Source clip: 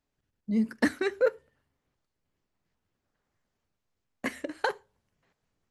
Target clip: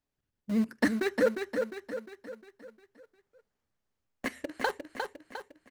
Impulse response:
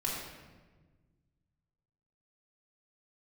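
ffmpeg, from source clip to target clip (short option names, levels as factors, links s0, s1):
-filter_complex "[0:a]asplit=2[s0][s1];[s1]aeval=exprs='val(0)*gte(abs(val(0)),0.0398)':c=same,volume=0.562[s2];[s0][s2]amix=inputs=2:normalize=0,aecho=1:1:354|708|1062|1416|1770|2124:0.531|0.255|0.122|0.0587|0.0282|0.0135,volume=0.562"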